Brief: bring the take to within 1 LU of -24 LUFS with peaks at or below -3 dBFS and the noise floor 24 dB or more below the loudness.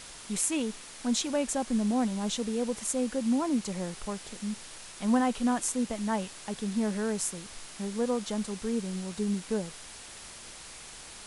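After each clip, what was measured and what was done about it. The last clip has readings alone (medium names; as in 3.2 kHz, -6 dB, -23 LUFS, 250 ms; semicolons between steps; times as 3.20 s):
noise floor -46 dBFS; noise floor target -55 dBFS; loudness -31.0 LUFS; peak level -13.5 dBFS; loudness target -24.0 LUFS
-> noise reduction 9 dB, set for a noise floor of -46 dBFS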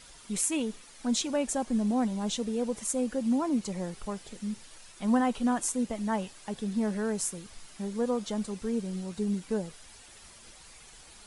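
noise floor -52 dBFS; noise floor target -55 dBFS
-> noise reduction 6 dB, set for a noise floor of -52 dBFS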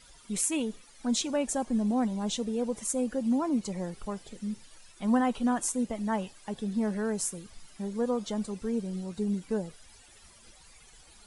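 noise floor -56 dBFS; loudness -31.0 LUFS; peak level -13.5 dBFS; loudness target -24.0 LUFS
-> trim +7 dB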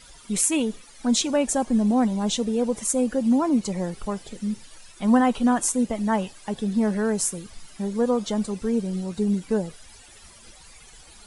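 loudness -24.0 LUFS; peak level -6.5 dBFS; noise floor -49 dBFS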